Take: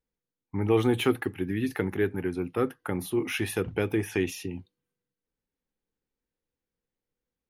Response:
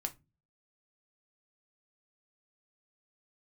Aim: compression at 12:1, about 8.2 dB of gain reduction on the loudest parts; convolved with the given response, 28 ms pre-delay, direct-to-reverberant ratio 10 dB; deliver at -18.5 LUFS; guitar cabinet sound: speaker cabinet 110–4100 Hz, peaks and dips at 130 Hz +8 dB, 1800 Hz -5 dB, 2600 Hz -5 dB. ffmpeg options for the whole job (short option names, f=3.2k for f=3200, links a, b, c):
-filter_complex "[0:a]acompressor=threshold=-26dB:ratio=12,asplit=2[a][b];[1:a]atrim=start_sample=2205,adelay=28[c];[b][c]afir=irnorm=-1:irlink=0,volume=-10dB[d];[a][d]amix=inputs=2:normalize=0,highpass=110,equalizer=f=130:t=q:w=4:g=8,equalizer=f=1.8k:t=q:w=4:g=-5,equalizer=f=2.6k:t=q:w=4:g=-5,lowpass=f=4.1k:w=0.5412,lowpass=f=4.1k:w=1.3066,volume=14.5dB"